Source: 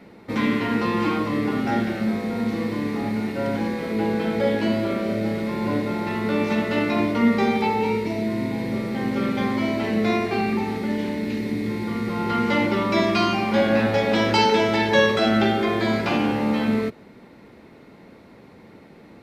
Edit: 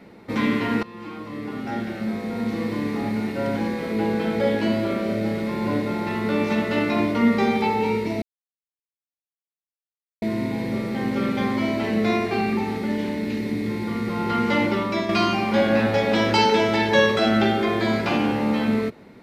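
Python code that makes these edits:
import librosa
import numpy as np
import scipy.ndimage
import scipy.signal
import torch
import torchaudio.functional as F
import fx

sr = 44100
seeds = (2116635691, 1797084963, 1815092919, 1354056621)

y = fx.edit(x, sr, fx.fade_in_from(start_s=0.83, length_s=1.93, floor_db=-20.5),
    fx.insert_silence(at_s=8.22, length_s=2.0),
    fx.fade_out_to(start_s=12.69, length_s=0.4, floor_db=-7.0), tone=tone)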